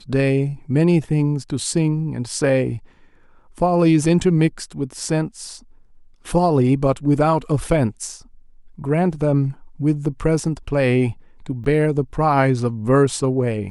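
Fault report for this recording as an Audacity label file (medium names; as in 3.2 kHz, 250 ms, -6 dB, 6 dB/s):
11.640000	11.650000	dropout 5.4 ms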